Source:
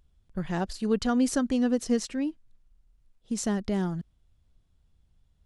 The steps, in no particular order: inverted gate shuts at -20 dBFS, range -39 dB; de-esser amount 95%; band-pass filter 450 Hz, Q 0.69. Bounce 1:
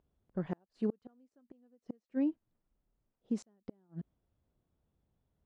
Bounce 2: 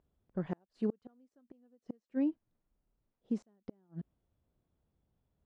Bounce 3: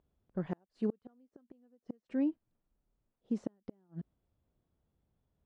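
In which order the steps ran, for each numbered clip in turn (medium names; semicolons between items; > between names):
inverted gate > band-pass filter > de-esser; inverted gate > de-esser > band-pass filter; de-esser > inverted gate > band-pass filter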